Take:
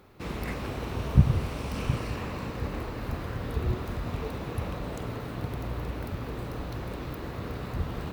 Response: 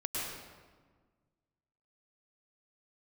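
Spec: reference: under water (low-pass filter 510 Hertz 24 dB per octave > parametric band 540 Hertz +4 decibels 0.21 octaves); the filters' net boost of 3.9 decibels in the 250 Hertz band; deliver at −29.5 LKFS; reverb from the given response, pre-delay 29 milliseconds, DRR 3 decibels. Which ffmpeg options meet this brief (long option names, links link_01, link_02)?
-filter_complex "[0:a]equalizer=frequency=250:width_type=o:gain=5.5,asplit=2[link_01][link_02];[1:a]atrim=start_sample=2205,adelay=29[link_03];[link_02][link_03]afir=irnorm=-1:irlink=0,volume=-7.5dB[link_04];[link_01][link_04]amix=inputs=2:normalize=0,lowpass=frequency=510:width=0.5412,lowpass=frequency=510:width=1.3066,equalizer=frequency=540:width_type=o:width=0.21:gain=4"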